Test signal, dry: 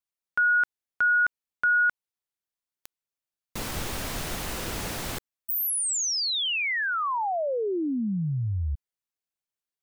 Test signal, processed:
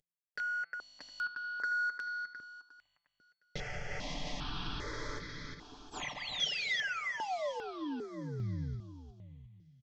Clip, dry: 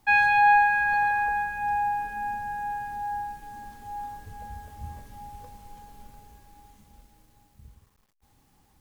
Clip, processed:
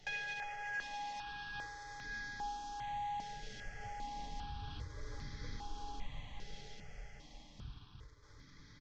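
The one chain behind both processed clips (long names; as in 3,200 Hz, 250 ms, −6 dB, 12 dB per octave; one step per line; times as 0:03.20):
variable-slope delta modulation 32 kbit/s
brickwall limiter −21.5 dBFS
hum removal 169.1 Hz, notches 31
downward compressor 5 to 1, threshold −42 dBFS
comb filter 6.8 ms, depth 48%
hollow resonant body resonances 2,000/3,300 Hz, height 13 dB, ringing for 45 ms
on a send: repeating echo 356 ms, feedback 45%, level −6 dB
on the sum: step-sequenced phaser 2.5 Hz 280–2,800 Hz
level +4.5 dB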